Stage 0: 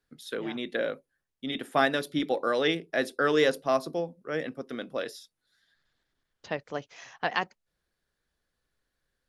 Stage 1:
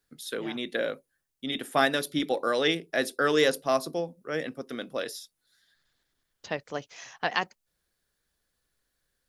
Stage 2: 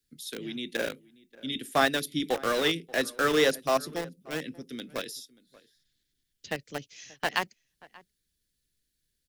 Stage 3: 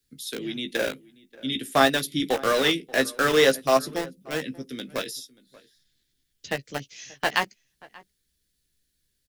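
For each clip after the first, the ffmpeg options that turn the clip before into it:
-af "highshelf=f=5400:g=10.5"
-filter_complex "[0:a]acrossover=split=150|400|2000[s0][s1][s2][s3];[s2]aeval=exprs='val(0)*gte(abs(val(0)),0.0376)':c=same[s4];[s0][s1][s4][s3]amix=inputs=4:normalize=0,asplit=2[s5][s6];[s6]adelay=583.1,volume=0.0794,highshelf=f=4000:g=-13.1[s7];[s5][s7]amix=inputs=2:normalize=0"
-filter_complex "[0:a]asplit=2[s0][s1];[s1]adelay=15,volume=0.398[s2];[s0][s2]amix=inputs=2:normalize=0,volume=1.58"

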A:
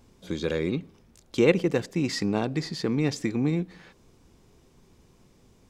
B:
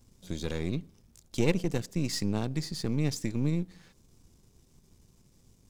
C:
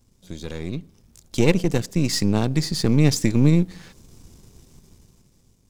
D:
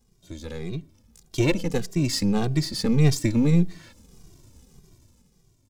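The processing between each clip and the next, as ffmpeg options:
-af "aeval=exprs='if(lt(val(0),0),0.447*val(0),val(0))':c=same,bass=f=250:g=9,treble=f=4000:g=12,volume=0.422"
-af "dynaudnorm=f=230:g=9:m=4.73"
-filter_complex "[0:a]asplit=2[s0][s1];[s1]adelay=2,afreqshift=-1.7[s2];[s0][s2]amix=inputs=2:normalize=1"

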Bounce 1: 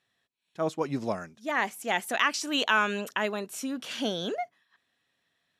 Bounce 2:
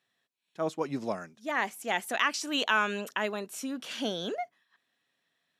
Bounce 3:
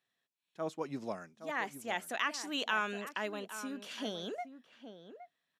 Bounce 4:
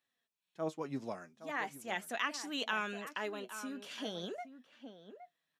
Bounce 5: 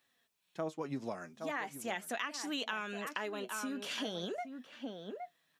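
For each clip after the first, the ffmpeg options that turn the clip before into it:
-af "highpass=140,volume=0.794"
-filter_complex "[0:a]asplit=2[s0][s1];[s1]adelay=816.3,volume=0.282,highshelf=f=4000:g=-18.4[s2];[s0][s2]amix=inputs=2:normalize=0,volume=0.473"
-af "flanger=delay=3.3:depth=5.2:regen=57:speed=0.42:shape=triangular,volume=1.33"
-af "acompressor=threshold=0.00501:ratio=4,volume=2.99"

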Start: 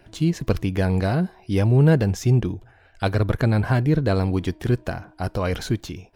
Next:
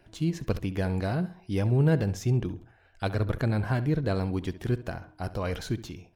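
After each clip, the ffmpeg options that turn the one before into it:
-filter_complex "[0:a]asplit=2[s0][s1];[s1]adelay=68,lowpass=f=4300:p=1,volume=0.178,asplit=2[s2][s3];[s3]adelay=68,lowpass=f=4300:p=1,volume=0.33,asplit=2[s4][s5];[s5]adelay=68,lowpass=f=4300:p=1,volume=0.33[s6];[s0][s2][s4][s6]amix=inputs=4:normalize=0,volume=0.447"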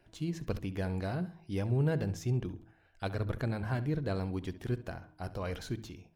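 -af "bandreject=f=53.84:t=h:w=4,bandreject=f=107.68:t=h:w=4,bandreject=f=161.52:t=h:w=4,bandreject=f=215.36:t=h:w=4,bandreject=f=269.2:t=h:w=4,bandreject=f=323.04:t=h:w=4,volume=0.501"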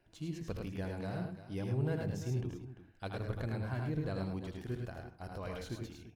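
-af "aecho=1:1:79|105|345:0.447|0.631|0.237,volume=0.501"

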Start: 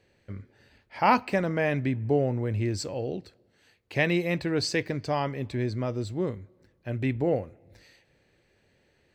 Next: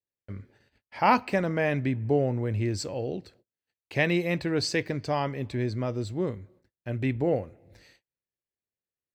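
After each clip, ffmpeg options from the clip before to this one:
-af "agate=range=0.0178:threshold=0.00141:ratio=16:detection=peak"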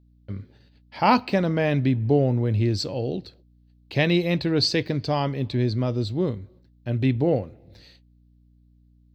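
-af "equalizer=f=125:t=o:w=1:g=4,equalizer=f=250:t=o:w=1:g=3,equalizer=f=2000:t=o:w=1:g=-5,equalizer=f=4000:t=o:w=1:g=11,equalizer=f=8000:t=o:w=1:g=-9,aeval=exprs='val(0)+0.00126*(sin(2*PI*60*n/s)+sin(2*PI*2*60*n/s)/2+sin(2*PI*3*60*n/s)/3+sin(2*PI*4*60*n/s)/4+sin(2*PI*5*60*n/s)/5)':c=same,volume=1.33"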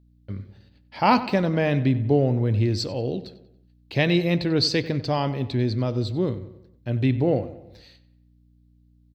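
-filter_complex "[0:a]asplit=2[s0][s1];[s1]adelay=93,lowpass=f=3600:p=1,volume=0.188,asplit=2[s2][s3];[s3]adelay=93,lowpass=f=3600:p=1,volume=0.5,asplit=2[s4][s5];[s5]adelay=93,lowpass=f=3600:p=1,volume=0.5,asplit=2[s6][s7];[s7]adelay=93,lowpass=f=3600:p=1,volume=0.5,asplit=2[s8][s9];[s9]adelay=93,lowpass=f=3600:p=1,volume=0.5[s10];[s0][s2][s4][s6][s8][s10]amix=inputs=6:normalize=0"

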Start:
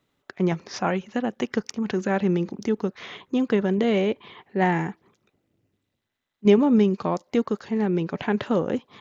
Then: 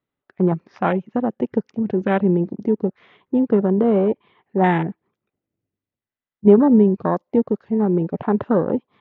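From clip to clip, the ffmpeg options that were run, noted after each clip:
-af "lowpass=2700,afwtdn=0.0355,volume=1.78"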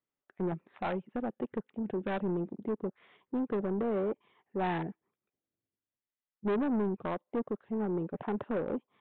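-af "equalizer=f=78:t=o:w=2.9:g=-6.5,aresample=8000,asoftclip=type=tanh:threshold=0.133,aresample=44100,volume=0.355"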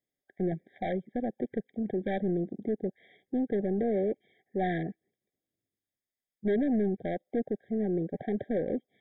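-af "afftfilt=real='re*eq(mod(floor(b*sr/1024/780),2),0)':imag='im*eq(mod(floor(b*sr/1024/780),2),0)':win_size=1024:overlap=0.75,volume=1.41"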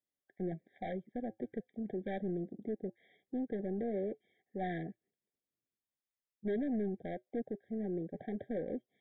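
-af "flanger=delay=3.3:depth=1.9:regen=-78:speed=0.25:shape=triangular,volume=0.668"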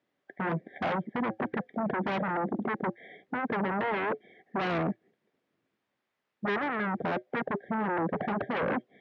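-filter_complex "[0:a]asplit=2[s0][s1];[s1]aeval=exprs='0.0447*sin(PI/2*5.62*val(0)/0.0447)':c=same,volume=0.596[s2];[s0][s2]amix=inputs=2:normalize=0,highpass=140,lowpass=2200,volume=1.68"

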